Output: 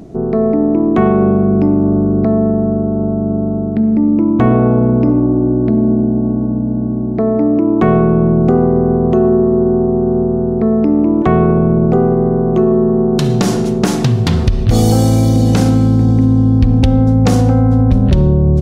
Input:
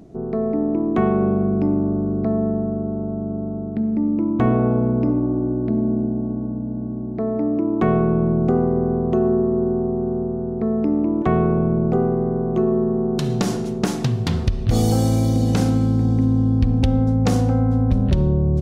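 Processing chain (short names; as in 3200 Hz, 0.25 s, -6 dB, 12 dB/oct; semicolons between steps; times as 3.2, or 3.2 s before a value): 5.24–5.64 LPF 1700 Hz 6 dB/oct; in parallel at +2 dB: limiter -17 dBFS, peak gain reduction 9 dB; on the sum: gain +3 dB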